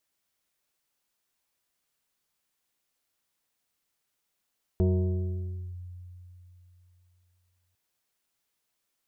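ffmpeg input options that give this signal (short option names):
-f lavfi -i "aevalsrc='0.112*pow(10,-3*t/3.22)*sin(2*PI*89.4*t+0.98*clip(1-t/0.96,0,1)*sin(2*PI*3.11*89.4*t))':d=2.95:s=44100"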